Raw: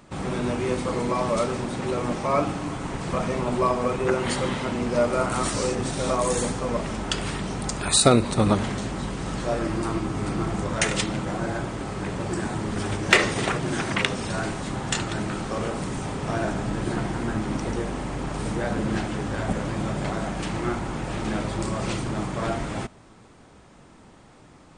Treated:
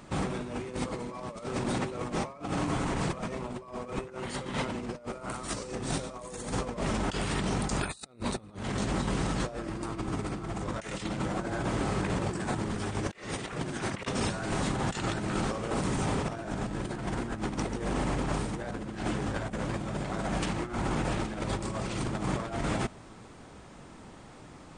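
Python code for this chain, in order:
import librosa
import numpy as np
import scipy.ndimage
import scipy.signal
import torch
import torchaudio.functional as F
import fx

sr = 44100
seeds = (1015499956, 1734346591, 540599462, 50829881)

y = fx.over_compress(x, sr, threshold_db=-30.0, ratio=-0.5)
y = y * 10.0 ** (-2.5 / 20.0)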